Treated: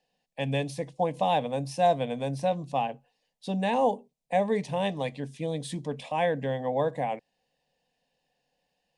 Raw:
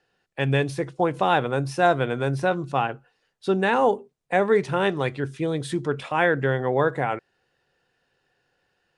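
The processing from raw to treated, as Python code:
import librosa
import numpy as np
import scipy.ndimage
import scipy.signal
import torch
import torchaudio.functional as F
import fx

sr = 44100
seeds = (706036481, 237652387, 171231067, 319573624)

y = fx.fixed_phaser(x, sr, hz=370.0, stages=6)
y = F.gain(torch.from_numpy(y), -2.0).numpy()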